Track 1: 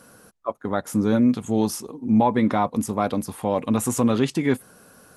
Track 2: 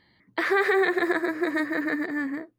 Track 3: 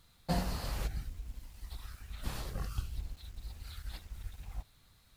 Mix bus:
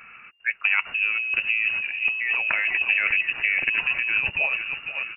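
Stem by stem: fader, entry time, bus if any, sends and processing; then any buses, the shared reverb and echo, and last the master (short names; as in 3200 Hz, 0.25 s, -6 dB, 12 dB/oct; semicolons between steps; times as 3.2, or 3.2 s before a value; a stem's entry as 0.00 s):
+2.0 dB, 0.00 s, no send, echo send -17 dB, dry
-7.5 dB, 1.70 s, muted 2.85–3.69, no send, no echo send, self-modulated delay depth 0.32 ms; negative-ratio compressor -34 dBFS, ratio -1
-1.5 dB, 0.40 s, no send, echo send -3 dB, compressor, threshold -44 dBFS, peak gain reduction 16 dB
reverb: off
echo: feedback echo 0.496 s, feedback 46%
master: inverted band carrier 2800 Hz; negative-ratio compressor -23 dBFS, ratio -1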